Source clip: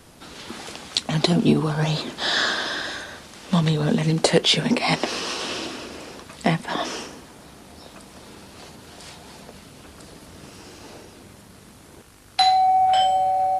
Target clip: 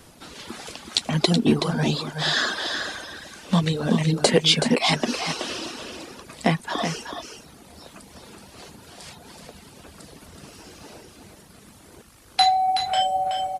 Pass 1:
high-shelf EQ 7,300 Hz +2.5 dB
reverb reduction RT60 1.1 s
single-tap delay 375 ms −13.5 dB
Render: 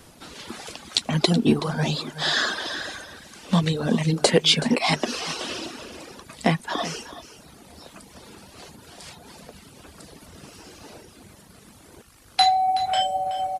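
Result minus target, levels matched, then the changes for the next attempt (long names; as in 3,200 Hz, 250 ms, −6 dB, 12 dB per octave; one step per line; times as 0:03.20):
echo-to-direct −6.5 dB
change: single-tap delay 375 ms −7 dB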